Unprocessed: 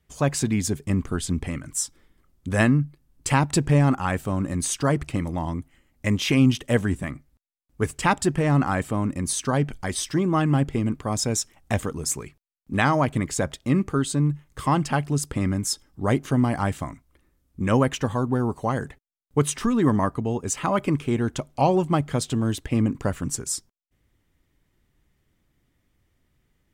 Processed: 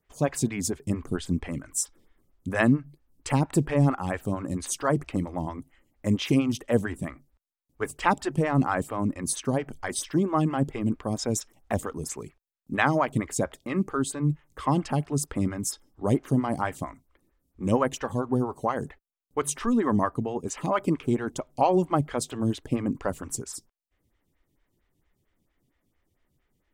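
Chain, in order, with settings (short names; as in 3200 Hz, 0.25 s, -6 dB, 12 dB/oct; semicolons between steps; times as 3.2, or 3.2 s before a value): photocell phaser 4.4 Hz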